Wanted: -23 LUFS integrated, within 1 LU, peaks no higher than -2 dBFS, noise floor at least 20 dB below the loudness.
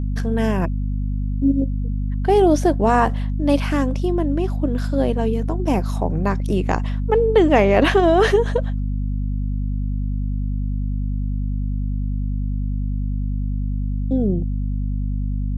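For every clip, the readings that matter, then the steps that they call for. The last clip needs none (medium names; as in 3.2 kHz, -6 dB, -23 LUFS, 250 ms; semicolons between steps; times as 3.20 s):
hum 50 Hz; highest harmonic 250 Hz; hum level -20 dBFS; loudness -21.0 LUFS; peak level -2.5 dBFS; loudness target -23.0 LUFS
-> de-hum 50 Hz, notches 5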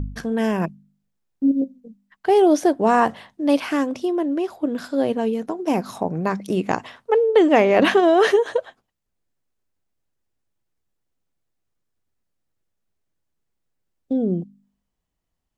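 hum not found; loudness -20.5 LUFS; peak level -3.5 dBFS; loudness target -23.0 LUFS
-> trim -2.5 dB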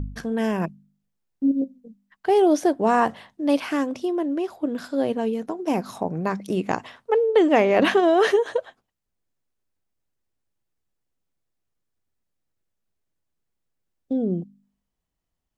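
loudness -23.0 LUFS; peak level -6.0 dBFS; noise floor -81 dBFS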